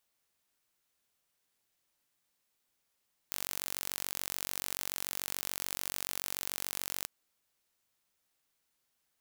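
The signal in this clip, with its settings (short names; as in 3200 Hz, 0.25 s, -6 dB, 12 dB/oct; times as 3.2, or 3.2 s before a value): pulse train 46.9/s, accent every 0, -9 dBFS 3.74 s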